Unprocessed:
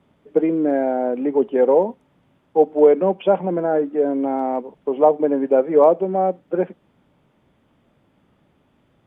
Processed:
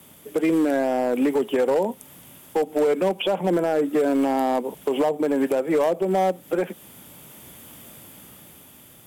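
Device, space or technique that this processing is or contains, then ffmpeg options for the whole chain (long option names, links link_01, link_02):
FM broadcast chain: -filter_complex "[0:a]highpass=48,dynaudnorm=framelen=300:gausssize=9:maxgain=11.5dB,acrossover=split=160|1000[link_01][link_02][link_03];[link_01]acompressor=threshold=-46dB:ratio=4[link_04];[link_02]acompressor=threshold=-24dB:ratio=4[link_05];[link_03]acompressor=threshold=-41dB:ratio=4[link_06];[link_04][link_05][link_06]amix=inputs=3:normalize=0,aemphasis=mode=production:type=75fm,alimiter=limit=-20dB:level=0:latency=1:release=82,asoftclip=type=hard:threshold=-22.5dB,lowpass=frequency=15000:width=0.5412,lowpass=frequency=15000:width=1.3066,aemphasis=mode=production:type=75fm,volume=8dB"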